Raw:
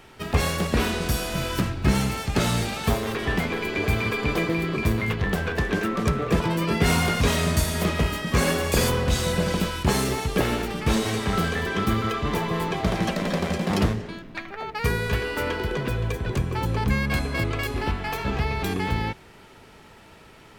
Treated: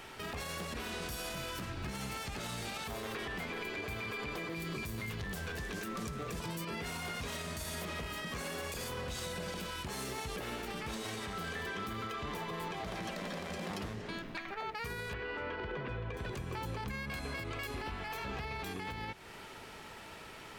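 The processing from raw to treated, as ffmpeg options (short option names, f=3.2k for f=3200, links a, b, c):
-filter_complex "[0:a]asettb=1/sr,asplit=3[a][b][c];[a]atrim=end=4.554[d];[b]atrim=start=4.55:end=6.65,asetpts=PTS-STARTPTS,afade=t=in:d=0.004:c=qsin,afade=t=out:st=2.096:d=0.004:c=qsin,bass=f=250:g=6,treble=f=4k:g=11[e];[c]atrim=start=6.646[f];[d][e]acrossfade=d=0.004:c1=hsin:c2=qsin[g];[g][f]acrossfade=d=0.004:c1=qsin:c2=hsin,asettb=1/sr,asplit=3[h][i][j];[h]atrim=end=15.134[k];[i]atrim=start=15.13:end=16.17,asetpts=PTS-STARTPTS,afade=t=in:d=0.004:c=qsin,afade=t=out:st=1.036:d=0.004:c=qsin,lowpass=2.5k[l];[j]atrim=start=16.166[m];[k][l]acrossfade=d=0.004:c1=hsin:c2=qsin[n];[n][m]acrossfade=d=0.004:c1=qsin:c2=hsin,lowshelf=f=430:g=-7,acompressor=threshold=-37dB:ratio=6,alimiter=level_in=9dB:limit=-24dB:level=0:latency=1:release=34,volume=-9dB,volume=2dB"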